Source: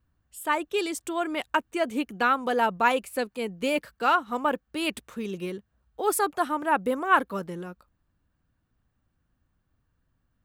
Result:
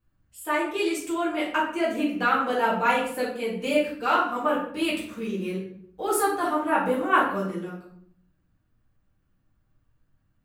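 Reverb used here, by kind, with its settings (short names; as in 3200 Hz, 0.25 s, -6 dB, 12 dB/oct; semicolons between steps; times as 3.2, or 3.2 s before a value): shoebox room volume 100 m³, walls mixed, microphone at 2 m; gain -7 dB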